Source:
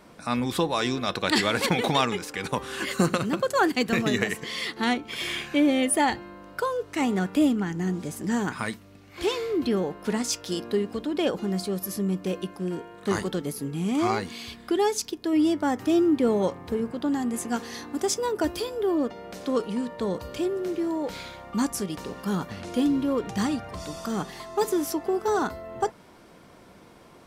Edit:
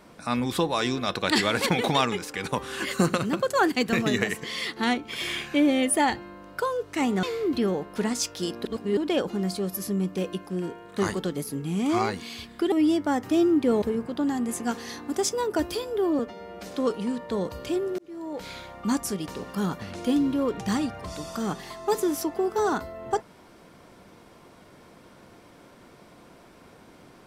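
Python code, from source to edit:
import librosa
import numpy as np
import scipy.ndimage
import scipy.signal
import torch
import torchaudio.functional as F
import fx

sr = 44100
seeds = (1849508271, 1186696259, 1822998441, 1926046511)

y = fx.edit(x, sr, fx.cut(start_s=7.23, length_s=2.09),
    fx.reverse_span(start_s=10.74, length_s=0.32),
    fx.cut(start_s=14.81, length_s=0.47),
    fx.cut(start_s=16.38, length_s=0.29),
    fx.stretch_span(start_s=19.04, length_s=0.31, factor=1.5),
    fx.fade_in_span(start_s=20.68, length_s=0.6), tone=tone)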